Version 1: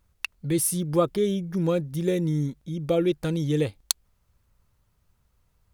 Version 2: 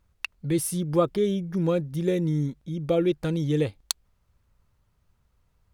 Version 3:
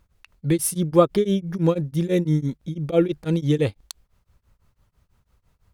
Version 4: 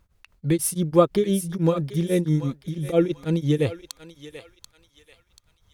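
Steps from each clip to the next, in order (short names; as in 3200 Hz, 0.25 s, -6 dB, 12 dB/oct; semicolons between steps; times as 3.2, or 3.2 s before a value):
high shelf 6100 Hz -7 dB
beating tremolo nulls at 6 Hz; gain +7 dB
thinning echo 0.736 s, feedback 41%, high-pass 1200 Hz, level -8.5 dB; gain -1 dB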